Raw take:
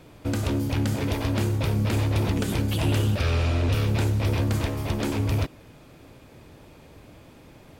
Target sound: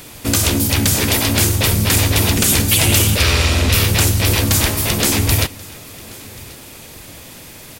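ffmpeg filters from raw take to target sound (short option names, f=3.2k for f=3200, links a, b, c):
-filter_complex "[0:a]asplit=2[a][b];[b]asetrate=35002,aresample=44100,atempo=1.25992,volume=-3dB[c];[a][c]amix=inputs=2:normalize=0,crystalizer=i=7.5:c=0,acontrast=64,asplit=2[d][e];[e]aecho=0:1:1084:0.0708[f];[d][f]amix=inputs=2:normalize=0,volume=-1dB"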